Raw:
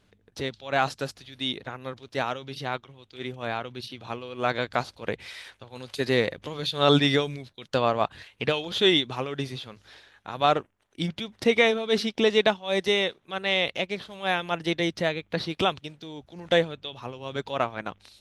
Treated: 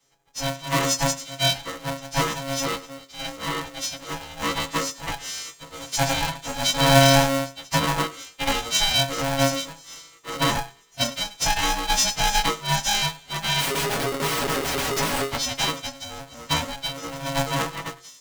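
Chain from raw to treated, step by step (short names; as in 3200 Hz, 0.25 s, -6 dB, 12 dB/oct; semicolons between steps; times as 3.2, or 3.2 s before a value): frequency quantiser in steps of 2 st; limiter -15 dBFS, peak gain reduction 9 dB; AGC gain up to 9 dB; 13.6–15.29 Schmitt trigger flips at -23 dBFS; metallic resonator 140 Hz, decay 0.28 s, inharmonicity 0.002; thinning echo 0.101 s, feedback 51%, high-pass 870 Hz, level -18.5 dB; polarity switched at an audio rate 410 Hz; gain +7 dB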